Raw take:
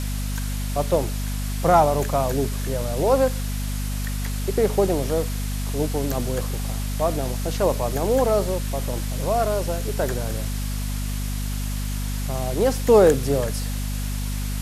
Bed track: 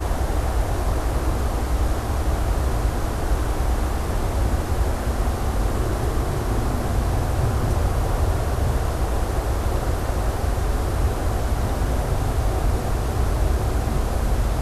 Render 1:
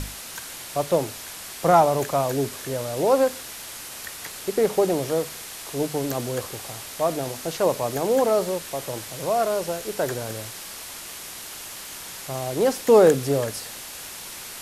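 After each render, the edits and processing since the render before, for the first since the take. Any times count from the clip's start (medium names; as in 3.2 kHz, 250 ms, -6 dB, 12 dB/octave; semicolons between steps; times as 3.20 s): hum notches 50/100/150/200/250 Hz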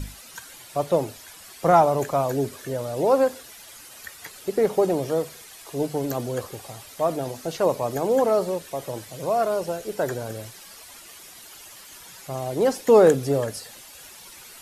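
noise reduction 11 dB, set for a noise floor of -38 dBFS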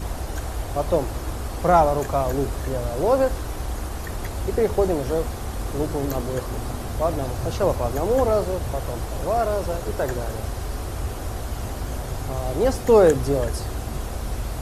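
add bed track -7 dB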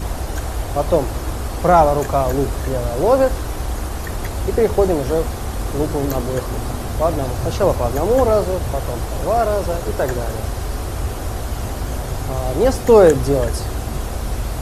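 trim +5 dB; peak limiter -1 dBFS, peak gain reduction 1.5 dB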